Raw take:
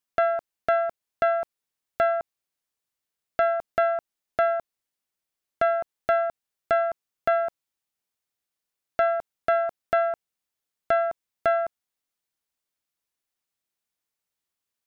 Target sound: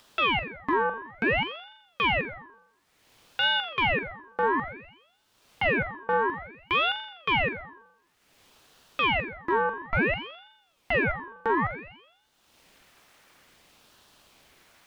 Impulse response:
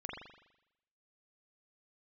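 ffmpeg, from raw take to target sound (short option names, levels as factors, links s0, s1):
-filter_complex "[0:a]asplit=2[s0][s1];[s1]highpass=f=720:p=1,volume=3.16,asoftclip=type=tanh:threshold=0.237[s2];[s0][s2]amix=inputs=2:normalize=0,lowpass=f=1700:p=1,volume=0.501,acompressor=mode=upward:threshold=0.0282:ratio=2.5,alimiter=limit=0.141:level=0:latency=1,acrossover=split=3000[s3][s4];[s4]acompressor=threshold=0.00158:ratio=4:attack=1:release=60[s5];[s3][s5]amix=inputs=2:normalize=0,asplit=2[s6][s7];[1:a]atrim=start_sample=2205[s8];[s7][s8]afir=irnorm=-1:irlink=0,volume=1[s9];[s6][s9]amix=inputs=2:normalize=0,aeval=exprs='val(0)*sin(2*PI*1200*n/s+1200*0.85/0.57*sin(2*PI*0.57*n/s))':c=same,volume=0.708"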